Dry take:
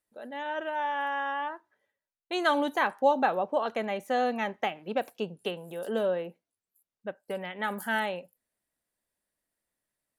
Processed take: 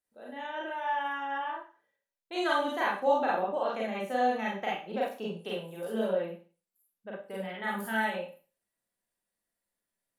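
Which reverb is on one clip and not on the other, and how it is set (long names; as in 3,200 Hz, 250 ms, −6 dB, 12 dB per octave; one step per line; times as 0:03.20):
four-comb reverb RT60 0.37 s, combs from 32 ms, DRR −5 dB
level −8 dB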